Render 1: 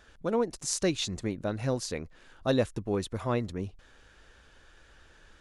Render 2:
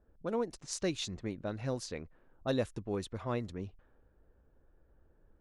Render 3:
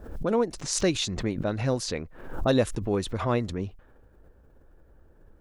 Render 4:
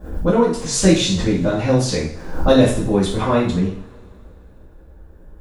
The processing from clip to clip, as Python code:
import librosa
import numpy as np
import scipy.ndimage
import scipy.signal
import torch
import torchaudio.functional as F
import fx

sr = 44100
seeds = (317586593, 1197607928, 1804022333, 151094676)

y1 = fx.env_lowpass(x, sr, base_hz=480.0, full_db=-26.0)
y1 = y1 * librosa.db_to_amplitude(-6.0)
y2 = fx.pre_swell(y1, sr, db_per_s=77.0)
y2 = y2 * librosa.db_to_amplitude(9.0)
y3 = fx.low_shelf(y2, sr, hz=350.0, db=3.5)
y3 = fx.rev_double_slope(y3, sr, seeds[0], early_s=0.5, late_s=2.9, knee_db=-27, drr_db=-9.5)
y3 = y3 * librosa.db_to_amplitude(-1.5)